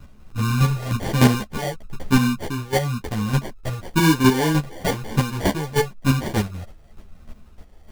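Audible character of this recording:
phaser sweep stages 12, 1 Hz, lowest notch 240–2,600 Hz
chopped level 3.3 Hz, depth 60%, duty 15%
aliases and images of a low sample rate 1,300 Hz, jitter 0%
a shimmering, thickened sound

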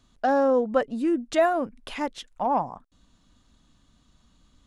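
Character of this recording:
background noise floor −64 dBFS
spectral slope −0.5 dB per octave

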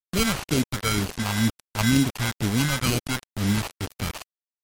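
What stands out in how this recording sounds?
aliases and images of a low sample rate 1,800 Hz, jitter 0%
phaser sweep stages 2, 2.1 Hz, lowest notch 300–1,000 Hz
a quantiser's noise floor 6 bits, dither none
MP3

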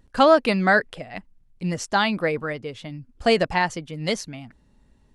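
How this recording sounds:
background noise floor −60 dBFS
spectral slope −3.0 dB per octave

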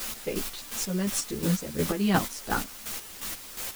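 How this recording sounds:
a quantiser's noise floor 6 bits, dither triangular
chopped level 2.8 Hz, depth 65%, duty 35%
a shimmering, thickened sound

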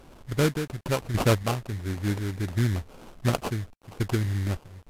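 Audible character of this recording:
aliases and images of a low sample rate 1,900 Hz, jitter 20%
sample-and-hold tremolo 3.5 Hz, depth 80%
a quantiser's noise floor 10 bits, dither none
Ogg Vorbis

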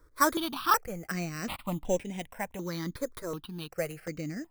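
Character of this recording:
aliases and images of a low sample rate 6,800 Hz, jitter 0%
sample-and-hold tremolo
notches that jump at a steady rate 2.7 Hz 770–4,400 Hz

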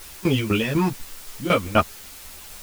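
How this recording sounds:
tremolo saw down 4 Hz, depth 85%
a quantiser's noise floor 8 bits, dither triangular
a shimmering, thickened sound

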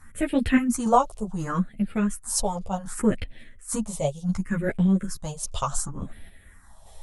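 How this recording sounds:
phaser sweep stages 4, 0.68 Hz, lowest notch 260–1,100 Hz
sample-and-hold tremolo
a shimmering, thickened sound

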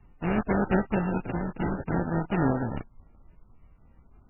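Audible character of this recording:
a buzz of ramps at a fixed pitch in blocks of 32 samples
phaser sweep stages 8, 0.49 Hz, lowest notch 480–1,700 Hz
aliases and images of a low sample rate 1,100 Hz, jitter 20%
MP3

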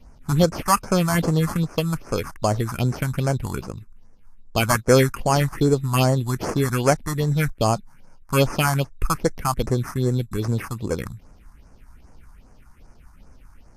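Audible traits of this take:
aliases and images of a low sample rate 3,800 Hz, jitter 0%
phaser sweep stages 4, 2.5 Hz, lowest notch 440–3,500 Hz
Ogg Vorbis

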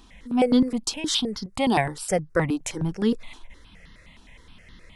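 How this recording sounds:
notches that jump at a steady rate 9.6 Hz 550–2,400 Hz

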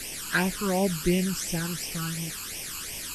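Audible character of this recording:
a quantiser's noise floor 6 bits, dither triangular
phaser sweep stages 12, 2.8 Hz, lowest notch 610–1,400 Hz
Ogg Vorbis

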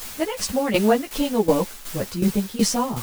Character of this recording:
a quantiser's noise floor 6 bits, dither triangular
tremolo saw down 2.7 Hz, depth 75%
a shimmering, thickened sound

